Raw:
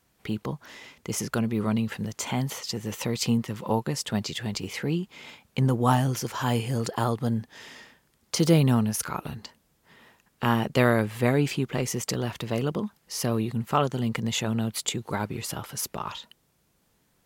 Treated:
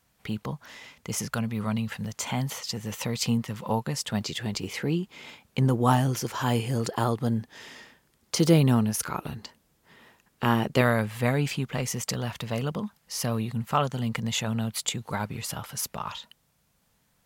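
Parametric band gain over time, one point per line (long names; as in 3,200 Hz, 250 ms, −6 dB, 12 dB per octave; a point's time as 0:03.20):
parametric band 350 Hz 0.65 octaves
−7.5 dB
from 0:01.26 −15 dB
from 0:02.05 −7.5 dB
from 0:04.21 +1 dB
from 0:10.81 −9.5 dB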